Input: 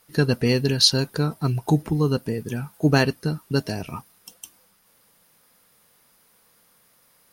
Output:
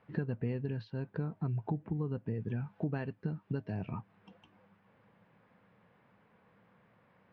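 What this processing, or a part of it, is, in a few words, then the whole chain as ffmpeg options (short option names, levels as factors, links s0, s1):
bass amplifier: -filter_complex "[0:a]asettb=1/sr,asplit=3[s0][s1][s2];[s0]atrim=end=2.274[s3];[s1]atrim=start=2.27:end=3.91,asetpts=PTS-STARTPTS,afade=t=in:d=0.004:c=qsin,afade=t=out:st=1.636:d=0.004:c=qsin,highshelf=f=3900:g=9[s4];[s2]atrim=start=3.906[s5];[s3][s4]acrossfade=d=0.004:c1=hsin:c2=qsin[s6];[s6][s5]acrossfade=d=0.004:c1=qsin:c2=hsin,acompressor=threshold=0.0126:ratio=4,highpass=63,equalizer=f=110:t=q:w=4:g=9,equalizer=f=190:t=q:w=4:g=7,equalizer=f=1300:t=q:w=4:g=-5,equalizer=f=2000:t=q:w=4:g=-3,lowpass=f=2200:w=0.5412,lowpass=f=2200:w=1.3066"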